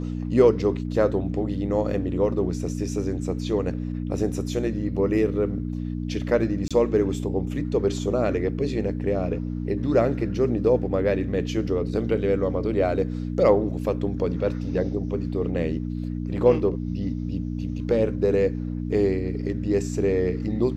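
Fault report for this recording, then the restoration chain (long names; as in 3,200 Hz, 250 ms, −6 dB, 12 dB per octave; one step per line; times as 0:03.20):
mains hum 60 Hz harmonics 5 −29 dBFS
0:06.68–0:06.71: drop-out 26 ms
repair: hum removal 60 Hz, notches 5
repair the gap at 0:06.68, 26 ms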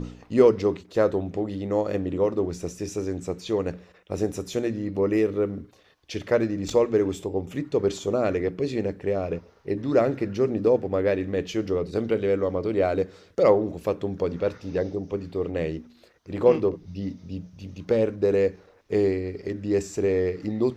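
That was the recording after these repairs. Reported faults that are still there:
none of them is left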